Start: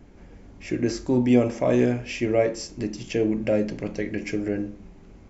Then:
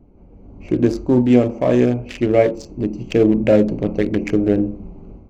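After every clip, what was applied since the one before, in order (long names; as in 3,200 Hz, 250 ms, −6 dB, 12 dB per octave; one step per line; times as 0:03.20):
adaptive Wiener filter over 25 samples
automatic gain control gain up to 12 dB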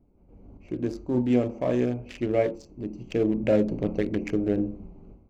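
sample-and-hold tremolo
level −6.5 dB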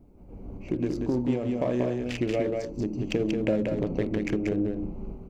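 downward compressor 6 to 1, threshold −33 dBFS, peak gain reduction 15.5 dB
single-tap delay 185 ms −4 dB
level +8 dB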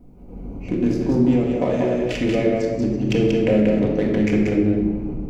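rectangular room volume 1,100 cubic metres, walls mixed, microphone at 1.9 metres
level +4 dB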